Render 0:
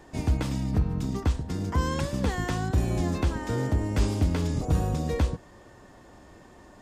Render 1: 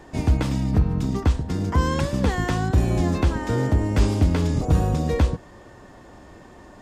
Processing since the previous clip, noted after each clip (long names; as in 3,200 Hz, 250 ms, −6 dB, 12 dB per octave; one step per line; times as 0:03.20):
high-shelf EQ 5,200 Hz −4.5 dB
level +5.5 dB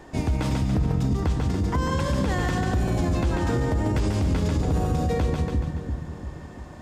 echo with a time of its own for lows and highs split 380 Hz, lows 343 ms, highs 142 ms, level −5 dB
brickwall limiter −15.5 dBFS, peak gain reduction 9 dB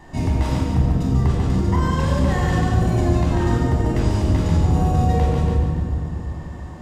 convolution reverb RT60 1.0 s, pre-delay 26 ms, DRR −1.5 dB
level −2.5 dB